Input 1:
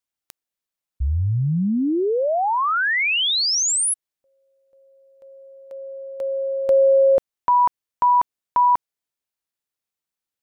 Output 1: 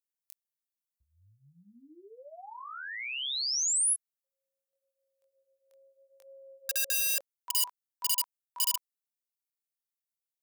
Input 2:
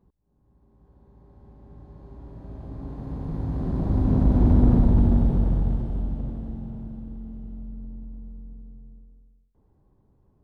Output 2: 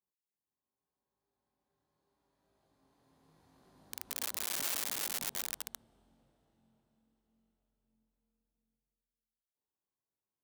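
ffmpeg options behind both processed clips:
ffmpeg -i in.wav -af "flanger=delay=20:depth=6:speed=0.78,aeval=exprs='(mod(6.68*val(0)+1,2)-1)/6.68':channel_layout=same,aderivative,volume=-4.5dB" out.wav

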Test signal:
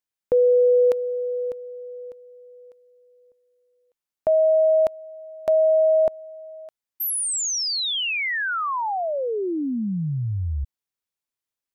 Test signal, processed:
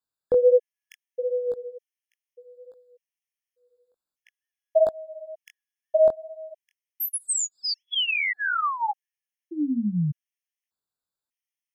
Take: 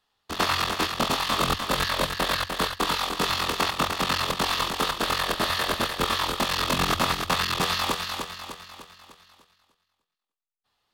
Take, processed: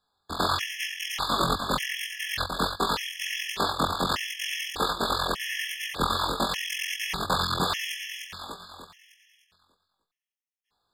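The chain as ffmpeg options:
ffmpeg -i in.wav -af "flanger=delay=17.5:depth=6.3:speed=1.4,afftfilt=real='re*gt(sin(2*PI*0.84*pts/sr)*(1-2*mod(floor(b*sr/1024/1700),2)),0)':imag='im*gt(sin(2*PI*0.84*pts/sr)*(1-2*mod(floor(b*sr/1024/1700),2)),0)':win_size=1024:overlap=0.75,volume=3dB" out.wav

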